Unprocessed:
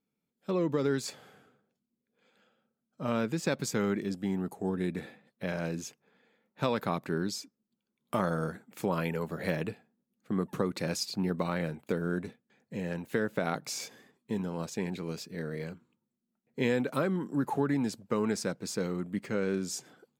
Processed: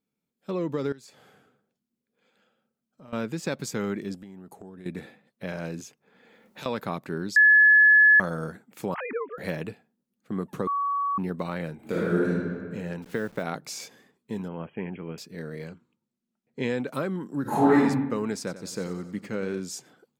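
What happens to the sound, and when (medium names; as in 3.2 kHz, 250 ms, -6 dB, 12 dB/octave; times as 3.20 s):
0.92–3.13 s: compression 3:1, threshold -51 dBFS
4.18–4.86 s: compression 10:1, threshold -40 dBFS
5.80–6.66 s: three bands compressed up and down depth 100%
7.36–8.20 s: bleep 1.71 kHz -12.5 dBFS
8.94–9.38 s: formants replaced by sine waves
10.67–11.18 s: bleep 1.13 kHz -23.5 dBFS
11.75–12.28 s: reverb throw, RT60 1.9 s, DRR -7.5 dB
13.02–13.43 s: send-on-delta sampling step -47.5 dBFS
14.48–15.18 s: brick-wall FIR low-pass 3.3 kHz
15.68–16.87 s: low-pass 8.3 kHz
17.42–17.82 s: reverb throw, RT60 0.91 s, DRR -11.5 dB
18.38–19.60 s: feedback delay 91 ms, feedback 56%, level -13.5 dB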